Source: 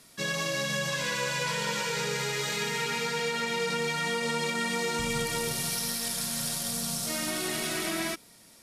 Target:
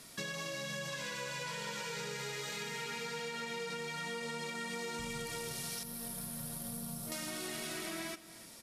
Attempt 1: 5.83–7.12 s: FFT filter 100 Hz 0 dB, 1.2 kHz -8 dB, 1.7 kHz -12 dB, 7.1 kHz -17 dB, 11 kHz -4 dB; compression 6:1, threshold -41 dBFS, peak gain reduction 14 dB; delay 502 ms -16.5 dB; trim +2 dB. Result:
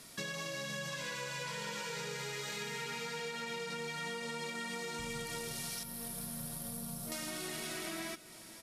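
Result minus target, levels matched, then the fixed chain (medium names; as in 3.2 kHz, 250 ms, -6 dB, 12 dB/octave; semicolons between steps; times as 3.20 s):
echo 201 ms late
5.83–7.12 s: FFT filter 100 Hz 0 dB, 1.2 kHz -8 dB, 1.7 kHz -12 dB, 7.1 kHz -17 dB, 11 kHz -4 dB; compression 6:1, threshold -41 dBFS, peak gain reduction 14 dB; delay 301 ms -16.5 dB; trim +2 dB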